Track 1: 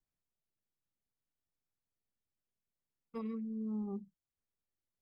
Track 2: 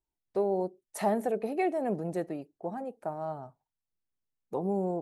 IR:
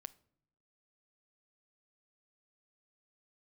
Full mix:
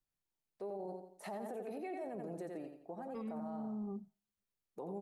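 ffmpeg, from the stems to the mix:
-filter_complex "[0:a]volume=-2dB,asplit=2[link_01][link_02];[link_02]volume=-15.5dB[link_03];[1:a]deesser=0.95,highpass=160,adelay=250,volume=-8.5dB,asplit=2[link_04][link_05];[link_05]volume=-7dB[link_06];[2:a]atrim=start_sample=2205[link_07];[link_03][link_07]afir=irnorm=-1:irlink=0[link_08];[link_06]aecho=0:1:86|172|258|344|430:1|0.37|0.137|0.0507|0.0187[link_09];[link_01][link_04][link_08][link_09]amix=inputs=4:normalize=0,alimiter=level_in=11.5dB:limit=-24dB:level=0:latency=1:release=31,volume=-11.5dB"

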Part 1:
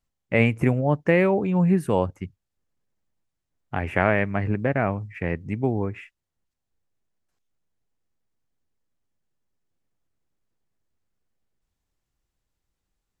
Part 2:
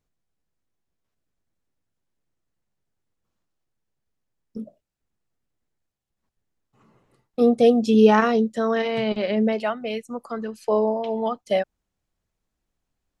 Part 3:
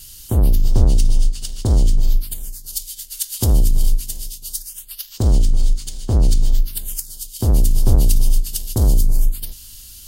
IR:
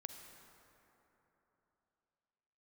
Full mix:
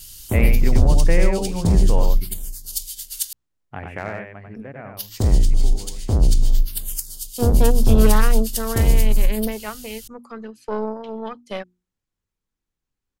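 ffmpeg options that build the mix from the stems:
-filter_complex "[0:a]asoftclip=type=hard:threshold=-6dB,volume=-4dB,afade=type=out:start_time=3.58:duration=0.68:silence=0.316228,asplit=2[link_01][link_02];[link_02]volume=-4.5dB[link_03];[1:a]equalizer=frequency=660:width_type=o:width=0.45:gain=-10,aeval=exprs='0.631*(cos(1*acos(clip(val(0)/0.631,-1,1)))-cos(1*PI/2))+0.1*(cos(6*acos(clip(val(0)/0.631,-1,1)))-cos(6*PI/2))':channel_layout=same,volume=-4.5dB[link_04];[2:a]volume=-1dB,asplit=3[link_05][link_06][link_07];[link_05]atrim=end=3.33,asetpts=PTS-STARTPTS,afade=type=out:start_time=3.326:duration=0.004:curve=hsin[link_08];[link_06]atrim=start=3.33:end=4.97,asetpts=PTS-STARTPTS,volume=0[link_09];[link_07]atrim=start=4.97,asetpts=PTS-STARTPTS,afade=type=in:duration=0.004:curve=hsin[link_10];[link_08][link_09][link_10]concat=n=3:v=0:a=1[link_11];[link_03]aecho=0:1:93:1[link_12];[link_01][link_04][link_11][link_12]amix=inputs=4:normalize=0,bandreject=frequency=60:width_type=h:width=6,bandreject=frequency=120:width_type=h:width=6,bandreject=frequency=180:width_type=h:width=6,bandreject=frequency=240:width_type=h:width=6,bandreject=frequency=300:width_type=h:width=6,bandreject=frequency=360:width_type=h:width=6"

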